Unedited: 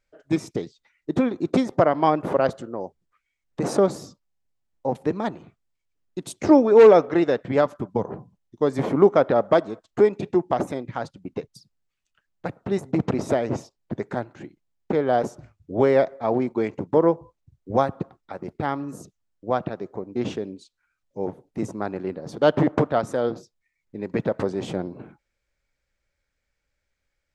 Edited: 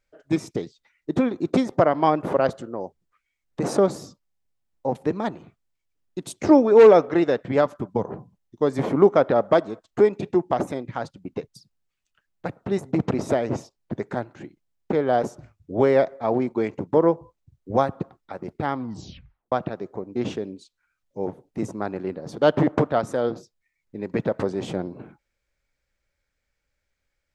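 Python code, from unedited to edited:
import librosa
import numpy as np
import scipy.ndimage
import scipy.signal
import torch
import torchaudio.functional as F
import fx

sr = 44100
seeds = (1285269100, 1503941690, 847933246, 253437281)

y = fx.edit(x, sr, fx.tape_stop(start_s=18.73, length_s=0.79), tone=tone)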